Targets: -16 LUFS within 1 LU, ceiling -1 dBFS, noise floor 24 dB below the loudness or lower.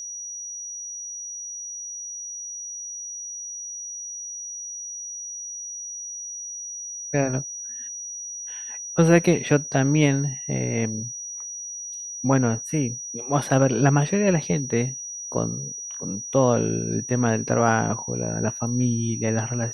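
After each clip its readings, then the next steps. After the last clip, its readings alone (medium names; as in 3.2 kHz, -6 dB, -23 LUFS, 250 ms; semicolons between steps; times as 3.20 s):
steady tone 5.8 kHz; tone level -32 dBFS; loudness -25.0 LUFS; peak level -4.0 dBFS; loudness target -16.0 LUFS
-> band-stop 5.8 kHz, Q 30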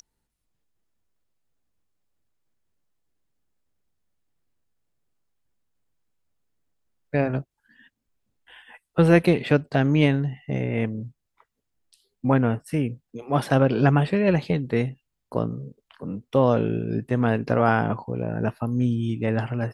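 steady tone not found; loudness -23.5 LUFS; peak level -4.0 dBFS; loudness target -16.0 LUFS
-> trim +7.5 dB; peak limiter -1 dBFS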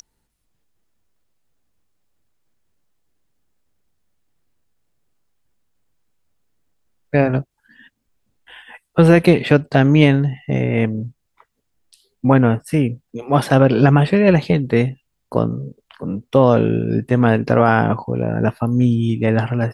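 loudness -16.5 LUFS; peak level -1.0 dBFS; noise floor -72 dBFS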